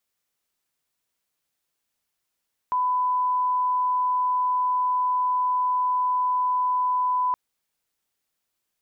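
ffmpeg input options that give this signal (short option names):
-f lavfi -i "sine=f=1000:d=4.62:r=44100,volume=-1.94dB"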